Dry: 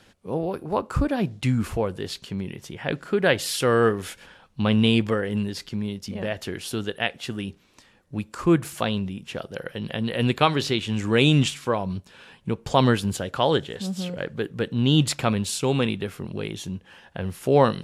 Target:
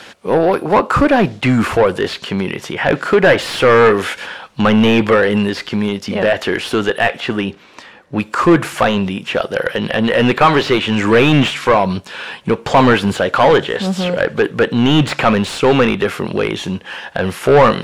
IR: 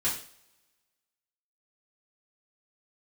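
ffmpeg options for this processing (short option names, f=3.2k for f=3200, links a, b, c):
-filter_complex "[0:a]asettb=1/sr,asplit=3[a][b][c];[a]atrim=end=7.204[d];[b]atrim=start=7.2:end=8.2,asetpts=PTS-STARTPTS,afade=t=in:d=0.004:c=qsin,afade=t=out:st=0.996:d=0.004:c=qsin,highshelf=f=4.3k:g=-10.5[e];[c]atrim=start=8.196[f];[d][e]acrossfade=d=0.004:c1=hsin:c2=qsin[g];[g][f]acrossfade=d=0.004:c1=qsin:c2=hsin,asplit=2[h][i];[i]highpass=f=720:p=1,volume=26dB,asoftclip=type=tanh:threshold=-3dB[j];[h][j]amix=inputs=2:normalize=0,lowpass=f=4k:p=1,volume=-6dB,acrossover=split=2700[k][l];[l]acompressor=threshold=-33dB:ratio=4:attack=1:release=60[m];[k][m]amix=inputs=2:normalize=0,volume=2.5dB"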